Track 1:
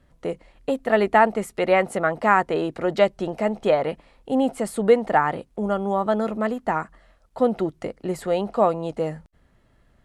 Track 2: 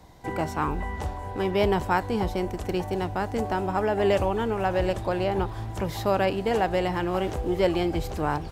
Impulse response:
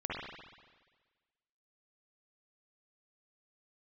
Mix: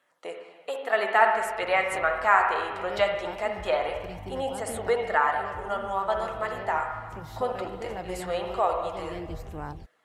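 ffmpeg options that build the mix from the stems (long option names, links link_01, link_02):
-filter_complex "[0:a]highpass=790,volume=-0.5dB,asplit=3[link_01][link_02][link_03];[link_02]volume=-3.5dB[link_04];[1:a]lowshelf=frequency=130:gain=6,aeval=exprs='val(0)+0.0158*(sin(2*PI*50*n/s)+sin(2*PI*2*50*n/s)/2+sin(2*PI*3*50*n/s)/3+sin(2*PI*4*50*n/s)/4+sin(2*PI*5*50*n/s)/5)':channel_layout=same,adelay=1350,volume=-8.5dB[link_05];[link_03]apad=whole_len=434963[link_06];[link_05][link_06]sidechaincompress=threshold=-26dB:ratio=8:attack=5.9:release=765[link_07];[2:a]atrim=start_sample=2205[link_08];[link_04][link_08]afir=irnorm=-1:irlink=0[link_09];[link_01][link_07][link_09]amix=inputs=3:normalize=0,flanger=delay=0.1:depth=7.9:regen=-56:speed=0.21:shape=sinusoidal"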